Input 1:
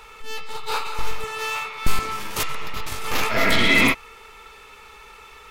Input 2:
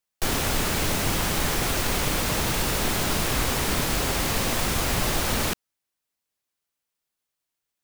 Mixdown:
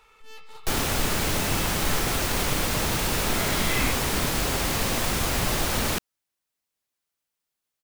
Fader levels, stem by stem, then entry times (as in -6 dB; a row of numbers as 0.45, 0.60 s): -13.5, -0.5 dB; 0.00, 0.45 s